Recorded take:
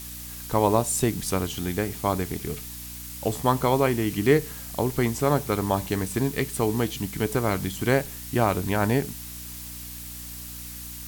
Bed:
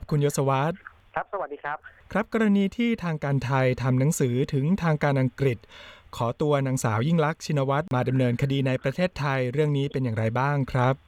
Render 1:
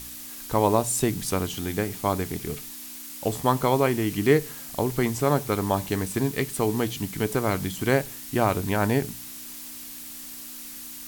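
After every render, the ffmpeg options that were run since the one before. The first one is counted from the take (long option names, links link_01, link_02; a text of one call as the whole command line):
ffmpeg -i in.wav -af "bandreject=frequency=60:width_type=h:width=4,bandreject=frequency=120:width_type=h:width=4,bandreject=frequency=180:width_type=h:width=4" out.wav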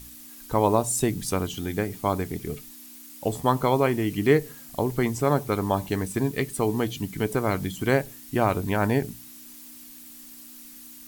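ffmpeg -i in.wav -af "afftdn=noise_reduction=8:noise_floor=-40" out.wav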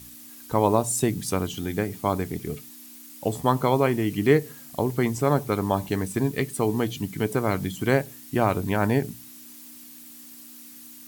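ffmpeg -i in.wav -af "highpass=93,lowshelf=frequency=150:gain=4" out.wav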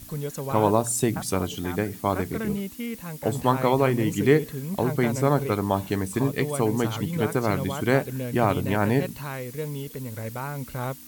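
ffmpeg -i in.wav -i bed.wav -filter_complex "[1:a]volume=-8.5dB[link_01];[0:a][link_01]amix=inputs=2:normalize=0" out.wav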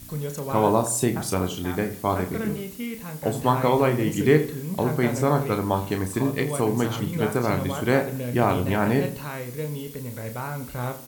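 ffmpeg -i in.wav -filter_complex "[0:a]asplit=2[link_01][link_02];[link_02]adelay=33,volume=-7.5dB[link_03];[link_01][link_03]amix=inputs=2:normalize=0,asplit=2[link_04][link_05];[link_05]adelay=82,lowpass=frequency=2000:poles=1,volume=-13dB,asplit=2[link_06][link_07];[link_07]adelay=82,lowpass=frequency=2000:poles=1,volume=0.39,asplit=2[link_08][link_09];[link_09]adelay=82,lowpass=frequency=2000:poles=1,volume=0.39,asplit=2[link_10][link_11];[link_11]adelay=82,lowpass=frequency=2000:poles=1,volume=0.39[link_12];[link_04][link_06][link_08][link_10][link_12]amix=inputs=5:normalize=0" out.wav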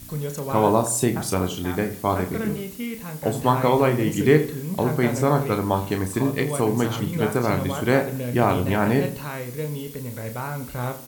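ffmpeg -i in.wav -af "volume=1.5dB" out.wav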